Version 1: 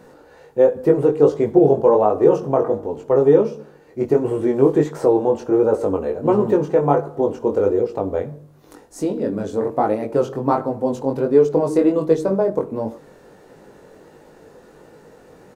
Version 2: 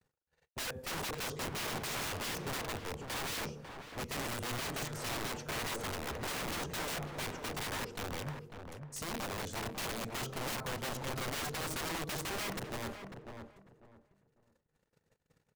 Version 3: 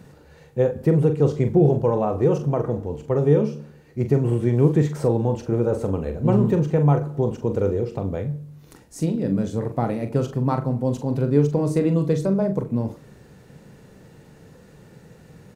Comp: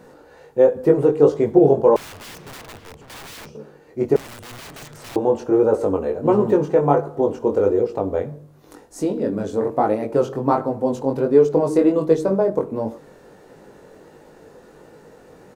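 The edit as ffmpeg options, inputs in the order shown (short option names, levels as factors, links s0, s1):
-filter_complex "[1:a]asplit=2[s0][s1];[0:a]asplit=3[s2][s3][s4];[s2]atrim=end=1.962[s5];[s0]atrim=start=1.958:end=3.552[s6];[s3]atrim=start=3.548:end=4.162[s7];[s1]atrim=start=4.158:end=5.162[s8];[s4]atrim=start=5.158[s9];[s5][s6]acrossfade=d=0.004:c1=hsin:c2=hsin[s10];[s10][s7]acrossfade=d=0.004:c1=hsin:c2=hsin[s11];[s11][s8]acrossfade=d=0.004:c1=hsin:c2=hsin[s12];[s12][s9]acrossfade=d=0.004:c1=hsin:c2=hsin"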